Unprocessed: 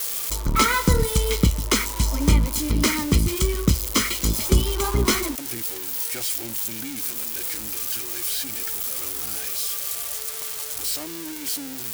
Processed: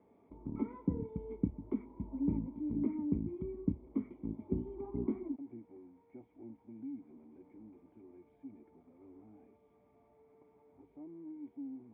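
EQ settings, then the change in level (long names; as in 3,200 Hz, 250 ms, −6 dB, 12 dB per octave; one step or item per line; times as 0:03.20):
dynamic equaliser 1,600 Hz, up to −3 dB, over −40 dBFS, Q 1.3
formant resonators in series u
loudspeaker in its box 110–3,300 Hz, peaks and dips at 140 Hz −4 dB, 320 Hz −10 dB, 520 Hz −6 dB, 860 Hz −9 dB, 1,500 Hz −3 dB
0.0 dB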